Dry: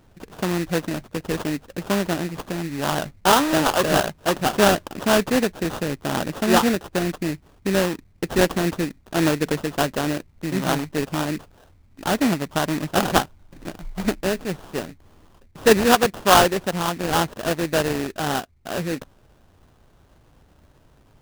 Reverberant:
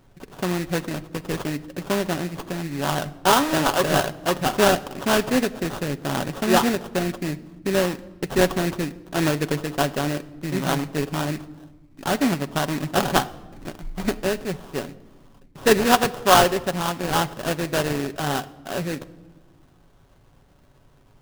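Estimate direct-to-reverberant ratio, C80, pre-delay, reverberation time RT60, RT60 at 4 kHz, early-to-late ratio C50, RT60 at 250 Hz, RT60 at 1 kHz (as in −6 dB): 9.0 dB, 20.5 dB, 5 ms, 1.2 s, 0.80 s, 18.5 dB, 2.2 s, 1.1 s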